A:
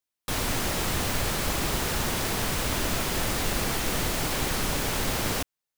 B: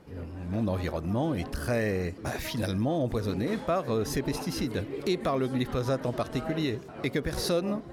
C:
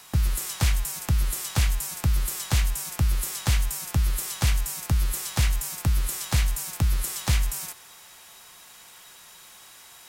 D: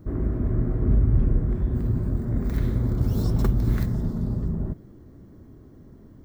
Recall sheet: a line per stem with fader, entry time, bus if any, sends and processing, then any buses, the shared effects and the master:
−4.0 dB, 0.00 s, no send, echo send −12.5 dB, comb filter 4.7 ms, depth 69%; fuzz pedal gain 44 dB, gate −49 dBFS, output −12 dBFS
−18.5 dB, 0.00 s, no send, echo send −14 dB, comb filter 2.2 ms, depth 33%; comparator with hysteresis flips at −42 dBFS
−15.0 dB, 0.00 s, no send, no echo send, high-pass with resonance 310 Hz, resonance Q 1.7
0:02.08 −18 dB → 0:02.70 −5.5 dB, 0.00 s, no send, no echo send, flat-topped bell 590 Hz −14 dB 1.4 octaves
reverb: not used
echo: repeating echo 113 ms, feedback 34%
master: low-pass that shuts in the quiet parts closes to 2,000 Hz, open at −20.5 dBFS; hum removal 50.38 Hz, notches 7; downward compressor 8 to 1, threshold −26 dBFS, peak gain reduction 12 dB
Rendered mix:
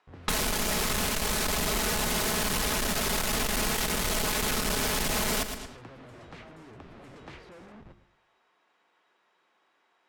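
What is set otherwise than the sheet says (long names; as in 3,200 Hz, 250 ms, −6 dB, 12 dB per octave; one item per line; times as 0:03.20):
stem B: missing comb filter 2.2 ms, depth 33%
stem D: muted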